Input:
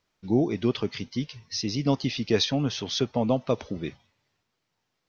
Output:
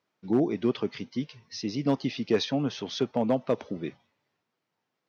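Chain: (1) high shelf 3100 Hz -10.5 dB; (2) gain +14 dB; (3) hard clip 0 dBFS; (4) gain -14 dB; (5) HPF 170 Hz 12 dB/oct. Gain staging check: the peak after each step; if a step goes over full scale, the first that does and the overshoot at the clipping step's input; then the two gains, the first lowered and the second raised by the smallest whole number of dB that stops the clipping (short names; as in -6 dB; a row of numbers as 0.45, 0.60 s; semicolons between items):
-10.0, +4.0, 0.0, -14.0, -11.5 dBFS; step 2, 4.0 dB; step 2 +10 dB, step 4 -10 dB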